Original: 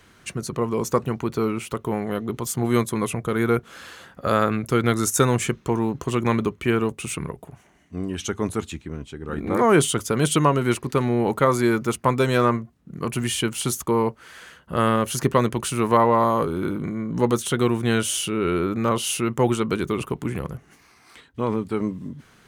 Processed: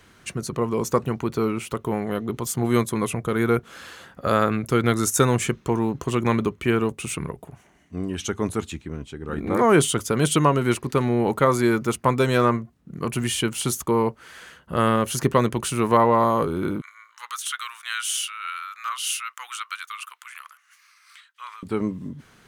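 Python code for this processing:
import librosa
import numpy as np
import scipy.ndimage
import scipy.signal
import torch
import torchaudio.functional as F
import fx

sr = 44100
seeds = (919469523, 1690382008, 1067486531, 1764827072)

y = fx.cheby1_highpass(x, sr, hz=1200.0, order=4, at=(16.81, 21.63))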